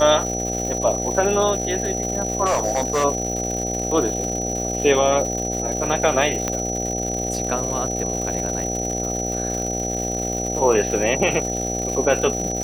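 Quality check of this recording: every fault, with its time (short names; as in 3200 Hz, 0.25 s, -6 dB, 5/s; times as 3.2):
buzz 60 Hz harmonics 13 -27 dBFS
crackle 290/s -27 dBFS
tone 5900 Hz -26 dBFS
2.45–3.05 clipped -15.5 dBFS
6.48 pop -8 dBFS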